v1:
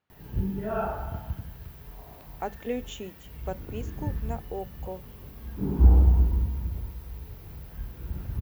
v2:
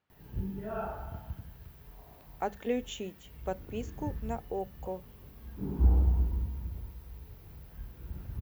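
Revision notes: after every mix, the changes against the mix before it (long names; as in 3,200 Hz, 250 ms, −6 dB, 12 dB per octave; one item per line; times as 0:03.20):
background −7.0 dB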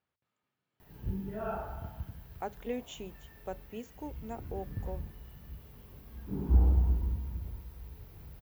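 speech −5.0 dB
background: entry +0.70 s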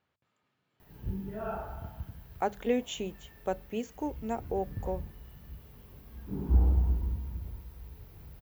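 speech +8.0 dB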